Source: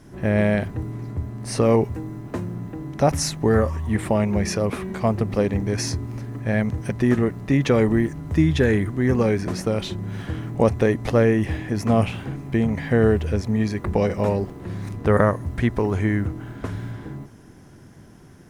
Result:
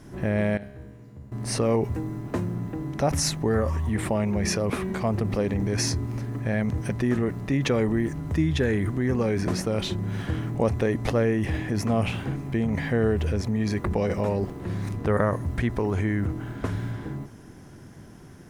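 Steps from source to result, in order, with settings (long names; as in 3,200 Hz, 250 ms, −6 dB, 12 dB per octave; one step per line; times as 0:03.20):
in parallel at −3 dB: compressor whose output falls as the input rises −25 dBFS, ratio −0.5
0:00.57–0:01.32: on the sum: tuned comb filter 68 Hz, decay 1.4 s, harmonics all, mix 90%
level −6 dB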